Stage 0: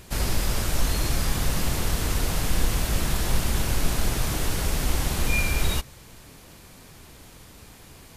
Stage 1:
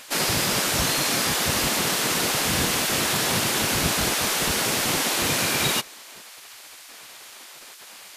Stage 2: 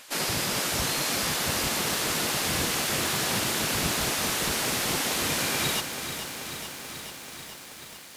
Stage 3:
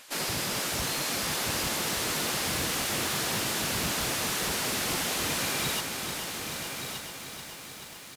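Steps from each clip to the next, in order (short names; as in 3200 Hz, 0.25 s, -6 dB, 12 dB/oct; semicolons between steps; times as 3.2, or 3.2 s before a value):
spectral gate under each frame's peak -15 dB weak; bell 3400 Hz +4 dB 3 oct; gain +5.5 dB
lo-fi delay 0.434 s, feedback 80%, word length 7-bit, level -9 dB; gain -5 dB
hard clip -22.5 dBFS, distortion -17 dB; on a send: echo 1.174 s -8 dB; on the sum: gain -2.5 dB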